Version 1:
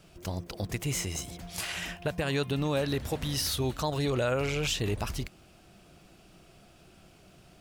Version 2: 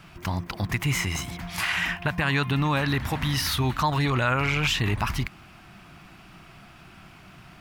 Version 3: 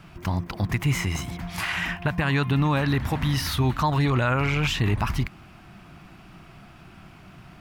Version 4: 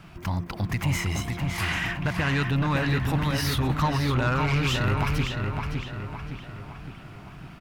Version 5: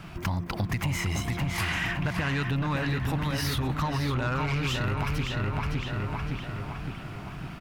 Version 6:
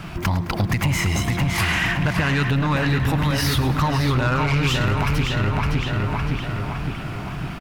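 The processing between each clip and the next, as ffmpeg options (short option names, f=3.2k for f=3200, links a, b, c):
-filter_complex "[0:a]equalizer=f=125:t=o:w=1:g=4,equalizer=f=250:t=o:w=1:g=3,equalizer=f=500:t=o:w=1:g=-10,equalizer=f=1k:t=o:w=1:g=10,equalizer=f=2k:t=o:w=1:g=8,equalizer=f=8k:t=o:w=1:g=-5,asplit=2[a][b];[b]alimiter=limit=-24dB:level=0:latency=1,volume=-2dB[c];[a][c]amix=inputs=2:normalize=0"
-af "tiltshelf=f=970:g=3"
-filter_complex "[0:a]asoftclip=type=tanh:threshold=-19dB,asplit=2[a][b];[b]adelay=561,lowpass=f=4k:p=1,volume=-4dB,asplit=2[c][d];[d]adelay=561,lowpass=f=4k:p=1,volume=0.51,asplit=2[e][f];[f]adelay=561,lowpass=f=4k:p=1,volume=0.51,asplit=2[g][h];[h]adelay=561,lowpass=f=4k:p=1,volume=0.51,asplit=2[i][j];[j]adelay=561,lowpass=f=4k:p=1,volume=0.51,asplit=2[k][l];[l]adelay=561,lowpass=f=4k:p=1,volume=0.51,asplit=2[m][n];[n]adelay=561,lowpass=f=4k:p=1,volume=0.51[o];[a][c][e][g][i][k][m][o]amix=inputs=8:normalize=0"
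-af "acompressor=threshold=-30dB:ratio=6,volume=4.5dB"
-filter_complex "[0:a]asplit=2[a][b];[b]asoftclip=type=tanh:threshold=-32.5dB,volume=-9dB[c];[a][c]amix=inputs=2:normalize=0,aecho=1:1:106|212|318|424|530:0.178|0.096|0.0519|0.028|0.0151,volume=6.5dB"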